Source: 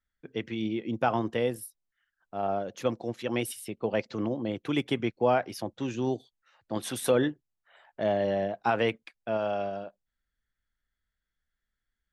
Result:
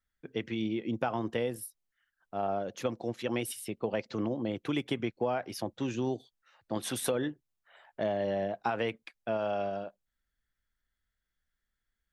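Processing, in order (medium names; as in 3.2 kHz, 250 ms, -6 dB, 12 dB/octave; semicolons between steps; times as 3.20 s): compression, threshold -27 dBFS, peak gain reduction 8.5 dB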